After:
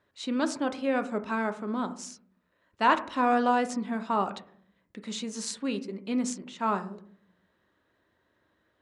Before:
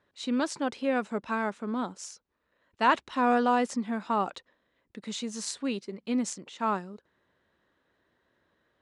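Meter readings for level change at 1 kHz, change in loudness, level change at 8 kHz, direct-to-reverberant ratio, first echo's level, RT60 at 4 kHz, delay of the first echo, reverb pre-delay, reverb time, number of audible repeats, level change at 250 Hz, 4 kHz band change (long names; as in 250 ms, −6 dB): +1.0 dB, +0.5 dB, 0.0 dB, 8.5 dB, no echo audible, 0.35 s, no echo audible, 3 ms, 0.60 s, no echo audible, +0.5 dB, 0.0 dB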